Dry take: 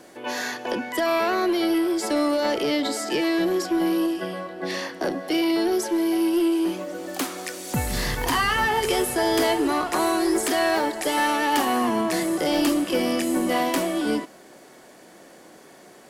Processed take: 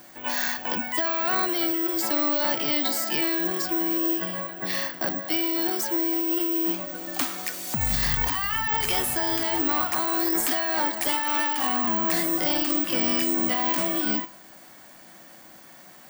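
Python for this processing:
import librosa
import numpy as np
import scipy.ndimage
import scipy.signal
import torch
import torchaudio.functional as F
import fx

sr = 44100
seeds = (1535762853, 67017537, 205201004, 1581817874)

y = fx.peak_eq(x, sr, hz=420.0, db=-14.5, octaves=0.82)
y = fx.comb_fb(y, sr, f0_hz=110.0, decay_s=0.38, harmonics='odd', damping=0.0, mix_pct=50)
y = fx.over_compress(y, sr, threshold_db=-32.0, ratio=-1.0)
y = (np.kron(scipy.signal.resample_poly(y, 1, 2), np.eye(2)[0]) * 2)[:len(y)]
y = F.gain(torch.from_numpy(y), 5.0).numpy()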